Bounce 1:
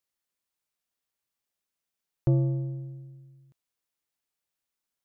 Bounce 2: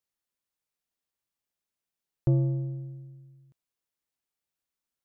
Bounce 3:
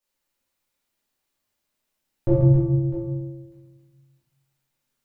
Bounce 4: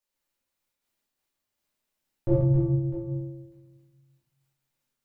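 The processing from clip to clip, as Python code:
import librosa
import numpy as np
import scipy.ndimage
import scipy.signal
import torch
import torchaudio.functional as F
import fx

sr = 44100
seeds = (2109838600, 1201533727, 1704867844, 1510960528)

y1 = fx.low_shelf(x, sr, hz=490.0, db=3.5)
y1 = y1 * librosa.db_to_amplitude(-3.5)
y2 = fx.echo_multitap(y1, sr, ms=(46, 138, 271, 653), db=(-5.5, -7.5, -6.5, -13.5))
y2 = fx.room_shoebox(y2, sr, seeds[0], volume_m3=150.0, walls='mixed', distance_m=2.5)
y3 = fx.am_noise(y2, sr, seeds[1], hz=5.7, depth_pct=50)
y3 = y3 * librosa.db_to_amplitude(-1.5)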